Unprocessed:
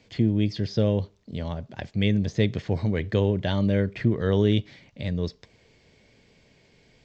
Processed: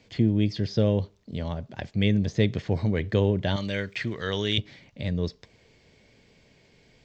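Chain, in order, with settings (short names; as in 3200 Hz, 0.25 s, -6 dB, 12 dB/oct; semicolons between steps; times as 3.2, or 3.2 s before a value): 3.56–4.58 tilt shelf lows -10 dB, about 1100 Hz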